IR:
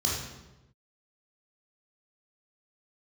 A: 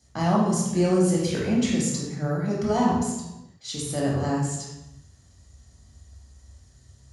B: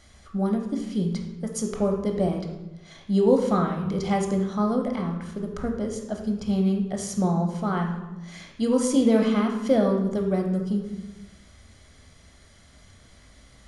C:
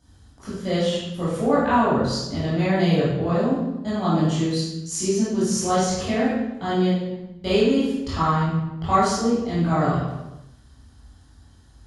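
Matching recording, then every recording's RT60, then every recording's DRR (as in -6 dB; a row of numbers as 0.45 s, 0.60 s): A; 1.0 s, 1.0 s, 1.0 s; -5.0 dB, 2.0 dB, -12.0 dB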